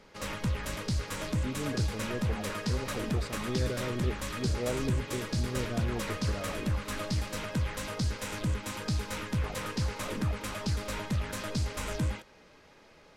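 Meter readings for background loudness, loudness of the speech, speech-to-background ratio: −34.0 LKFS, −38.0 LKFS, −4.0 dB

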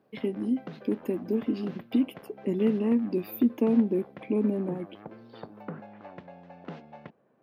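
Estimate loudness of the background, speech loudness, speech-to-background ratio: −46.0 LKFS, −28.5 LKFS, 17.5 dB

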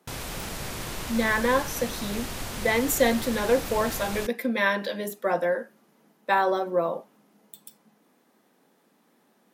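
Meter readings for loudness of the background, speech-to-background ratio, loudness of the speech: −34.5 LKFS, 8.5 dB, −26.0 LKFS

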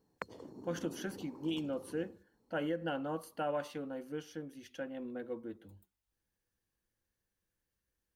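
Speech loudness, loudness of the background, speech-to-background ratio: −40.5 LKFS, −51.0 LKFS, 10.5 dB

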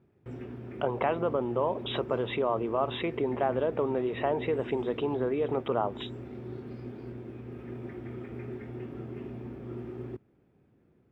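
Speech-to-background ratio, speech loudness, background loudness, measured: 11.0 dB, −30.5 LKFS, −41.5 LKFS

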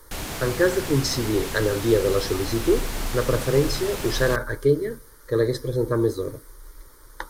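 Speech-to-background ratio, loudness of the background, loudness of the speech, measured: 7.5 dB, −31.5 LKFS, −24.0 LKFS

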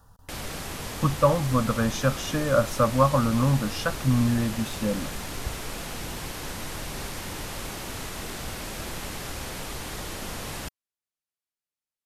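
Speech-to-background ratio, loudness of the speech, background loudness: 10.0 dB, −24.5 LKFS, −34.5 LKFS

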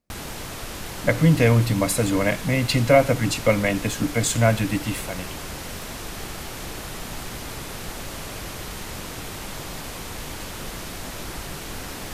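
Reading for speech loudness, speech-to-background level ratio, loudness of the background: −21.0 LKFS, 12.5 dB, −33.5 LKFS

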